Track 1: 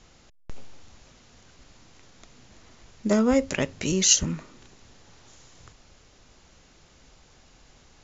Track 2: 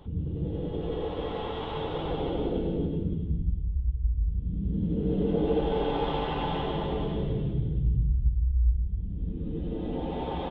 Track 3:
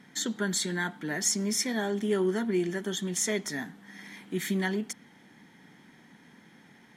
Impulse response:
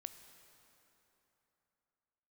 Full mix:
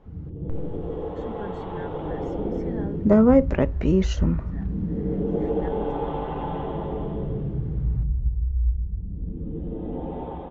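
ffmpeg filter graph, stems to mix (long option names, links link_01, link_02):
-filter_complex "[0:a]volume=0dB,asplit=2[link_01][link_02];[1:a]aemphasis=mode=production:type=75fm,volume=-7dB,asplit=2[link_03][link_04];[link_04]volume=-3.5dB[link_05];[2:a]adelay=1000,volume=-12.5dB[link_06];[link_02]apad=whole_len=351428[link_07];[link_06][link_07]sidechaincompress=threshold=-43dB:ratio=8:attack=16:release=228[link_08];[3:a]atrim=start_sample=2205[link_09];[link_05][link_09]afir=irnorm=-1:irlink=0[link_10];[link_01][link_03][link_08][link_10]amix=inputs=4:normalize=0,lowpass=1100,dynaudnorm=framelen=180:gausssize=5:maxgain=6dB"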